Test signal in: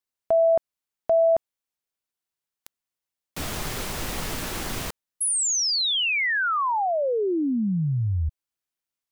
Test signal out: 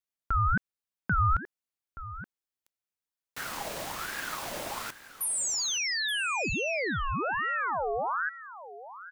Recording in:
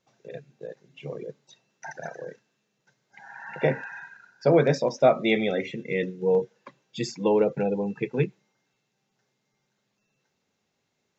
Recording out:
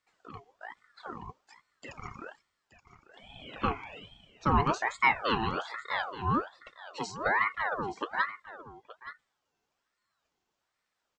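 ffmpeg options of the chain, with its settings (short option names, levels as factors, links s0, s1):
-filter_complex "[0:a]asplit=2[s0][s1];[s1]aecho=0:1:875:0.188[s2];[s0][s2]amix=inputs=2:normalize=0,aeval=exprs='val(0)*sin(2*PI*1100*n/s+1100*0.5/1.2*sin(2*PI*1.2*n/s))':c=same,volume=0.668"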